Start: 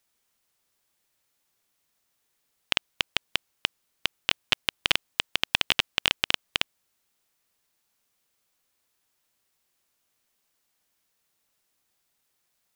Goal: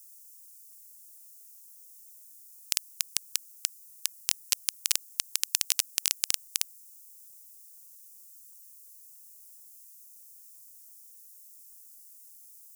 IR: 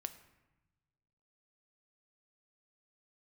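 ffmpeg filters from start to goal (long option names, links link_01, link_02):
-filter_complex "[0:a]highshelf=frequency=3200:gain=9.5,aexciter=amount=12.1:drive=9.2:freq=5000,asettb=1/sr,asplit=3[link_01][link_02][link_03];[link_01]atrim=end=3.044[link_04];[link_02]atrim=start=3.04:end=4.15,asetpts=PTS-STARTPTS,afade=type=in:duration=0.004:curve=qsin,afade=type=out:start_time=1.106:duration=0.004:curve=qsin,bandreject=frequency=1700:width=6.4[link_05];[link_03]atrim=start=4.146[link_06];[link_04][link_05]acrossfade=duration=0.004:curve1=hsin:curve2=qsin[link_07];[link_07][link_06]acrossfade=duration=0.004:curve1=qsin:curve2=hsin,volume=-15.5dB"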